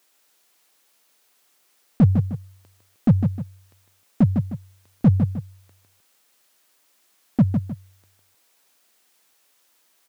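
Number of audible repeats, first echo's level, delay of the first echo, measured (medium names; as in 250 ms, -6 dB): 2, -6.5 dB, 154 ms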